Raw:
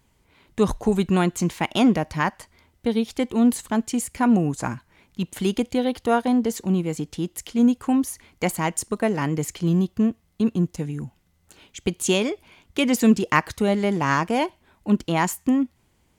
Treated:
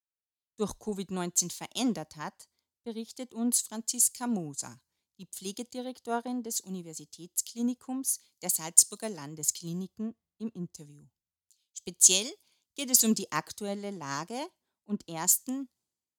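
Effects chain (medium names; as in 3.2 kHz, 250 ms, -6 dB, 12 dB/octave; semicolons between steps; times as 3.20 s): high-pass 140 Hz 6 dB/octave; resonant high shelf 3.4 kHz +13 dB, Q 1.5; band-stop 5.6 kHz, Q 20; three bands expanded up and down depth 100%; trim -14 dB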